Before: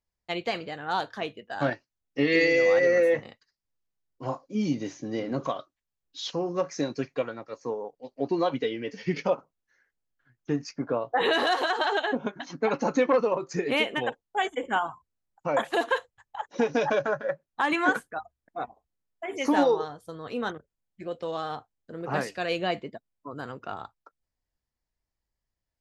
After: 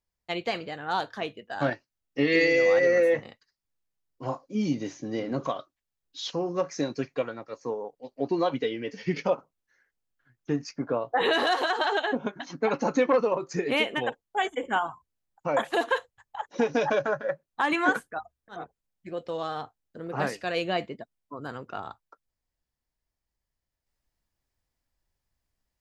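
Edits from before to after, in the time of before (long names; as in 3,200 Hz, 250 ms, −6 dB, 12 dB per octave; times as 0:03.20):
0:18.60–0:20.54: remove, crossfade 0.24 s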